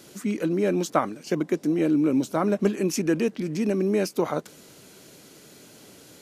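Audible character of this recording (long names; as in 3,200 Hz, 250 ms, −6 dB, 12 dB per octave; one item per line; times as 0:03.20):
background noise floor −51 dBFS
spectral slope −6.0 dB per octave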